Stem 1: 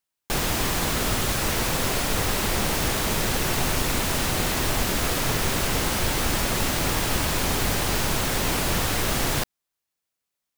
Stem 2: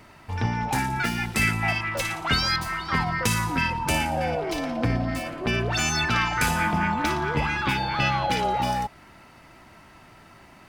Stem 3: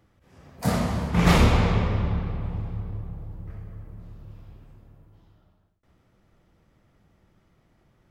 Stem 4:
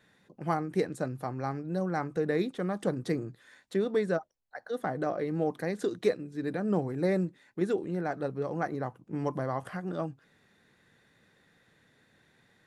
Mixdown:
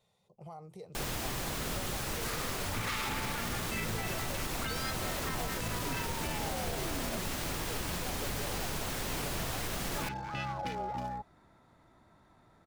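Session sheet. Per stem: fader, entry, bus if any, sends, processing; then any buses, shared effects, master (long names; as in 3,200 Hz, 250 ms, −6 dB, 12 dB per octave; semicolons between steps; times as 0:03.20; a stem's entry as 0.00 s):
−11.5 dB, 0.65 s, no send, no processing
−11.5 dB, 2.35 s, muted 0:07.17–0:09.95, no send, adaptive Wiener filter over 15 samples
−5.5 dB, 1.60 s, no send, Butterworth high-pass 1,100 Hz 48 dB per octave
−4.0 dB, 0.00 s, no send, downward compressor 4 to 1, threshold −30 dBFS, peak gain reduction 9 dB; brickwall limiter −28.5 dBFS, peak gain reduction 9 dB; phaser with its sweep stopped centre 690 Hz, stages 4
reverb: not used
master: brickwall limiter −25 dBFS, peak gain reduction 7 dB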